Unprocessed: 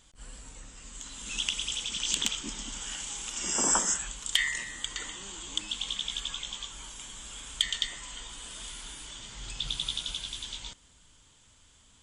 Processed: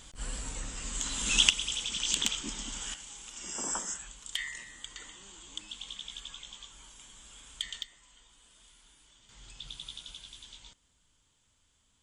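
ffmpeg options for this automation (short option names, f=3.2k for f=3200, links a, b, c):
-af "asetnsamples=n=441:p=0,asendcmd='1.5 volume volume -0.5dB;2.94 volume volume -9dB;7.83 volume volume -18dB;9.29 volume volume -11dB',volume=8.5dB"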